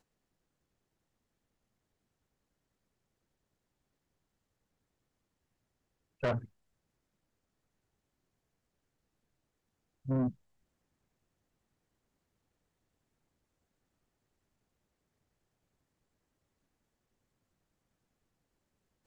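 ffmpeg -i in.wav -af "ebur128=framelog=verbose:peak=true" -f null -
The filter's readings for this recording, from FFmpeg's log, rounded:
Integrated loudness:
  I:         -34.9 LUFS
  Threshold: -46.0 LUFS
Loudness range:
  LRA:         1.8 LU
  Threshold: -63.0 LUFS
  LRA low:   -43.7 LUFS
  LRA high:  -41.9 LUFS
True peak:
  Peak:      -26.6 dBFS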